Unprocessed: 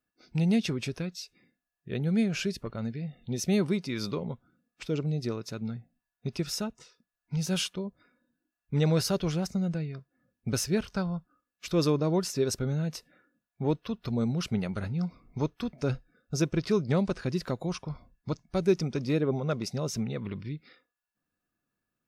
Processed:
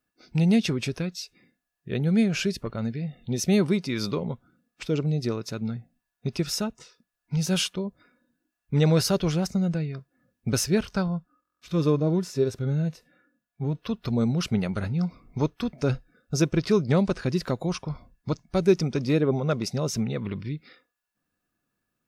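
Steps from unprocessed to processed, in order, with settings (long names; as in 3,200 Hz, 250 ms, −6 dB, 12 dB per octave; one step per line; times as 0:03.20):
0:11.08–0:13.80: harmonic and percussive parts rebalanced percussive −16 dB
buffer that repeats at 0:11.43, samples 1,024, times 7
level +4.5 dB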